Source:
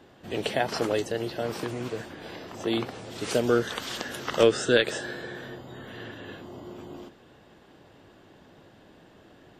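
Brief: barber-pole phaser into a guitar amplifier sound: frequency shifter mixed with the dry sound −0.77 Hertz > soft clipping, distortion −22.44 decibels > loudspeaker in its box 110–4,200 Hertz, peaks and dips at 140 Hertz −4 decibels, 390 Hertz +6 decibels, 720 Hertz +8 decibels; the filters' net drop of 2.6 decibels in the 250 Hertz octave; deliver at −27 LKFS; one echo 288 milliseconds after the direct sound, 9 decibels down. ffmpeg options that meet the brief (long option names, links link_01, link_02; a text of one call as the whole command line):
ffmpeg -i in.wav -filter_complex "[0:a]equalizer=frequency=250:width_type=o:gain=-8,aecho=1:1:288:0.355,asplit=2[link_01][link_02];[link_02]afreqshift=-0.77[link_03];[link_01][link_03]amix=inputs=2:normalize=1,asoftclip=threshold=-16dB,highpass=110,equalizer=frequency=140:width_type=q:width=4:gain=-4,equalizer=frequency=390:width_type=q:width=4:gain=6,equalizer=frequency=720:width_type=q:width=4:gain=8,lowpass=frequency=4200:width=0.5412,lowpass=frequency=4200:width=1.3066,volume=4.5dB" out.wav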